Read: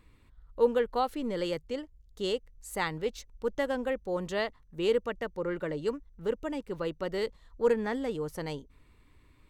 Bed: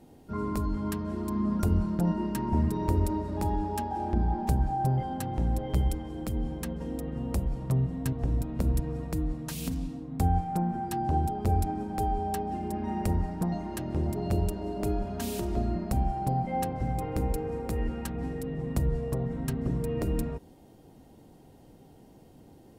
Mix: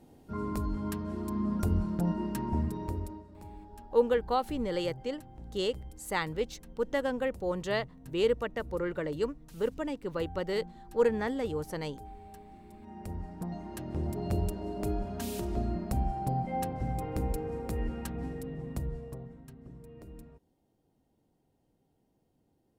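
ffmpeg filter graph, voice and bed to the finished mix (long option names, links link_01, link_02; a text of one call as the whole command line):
ffmpeg -i stem1.wav -i stem2.wav -filter_complex "[0:a]adelay=3350,volume=0dB[link_01];[1:a]volume=13dB,afade=type=out:start_time=2.42:duration=0.85:silence=0.158489,afade=type=in:start_time=12.76:duration=1.5:silence=0.158489,afade=type=out:start_time=18.16:duration=1.29:silence=0.149624[link_02];[link_01][link_02]amix=inputs=2:normalize=0" out.wav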